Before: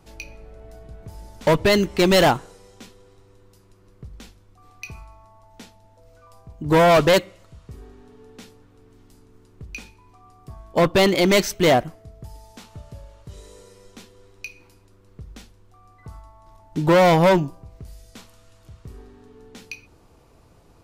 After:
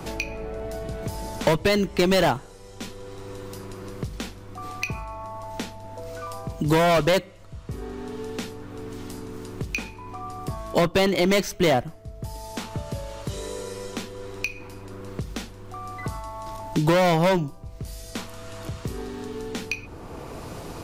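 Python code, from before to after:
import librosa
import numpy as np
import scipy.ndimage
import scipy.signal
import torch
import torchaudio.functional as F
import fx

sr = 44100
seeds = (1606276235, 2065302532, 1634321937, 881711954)

y = fx.band_squash(x, sr, depth_pct=70)
y = F.gain(torch.from_numpy(y), 3.0).numpy()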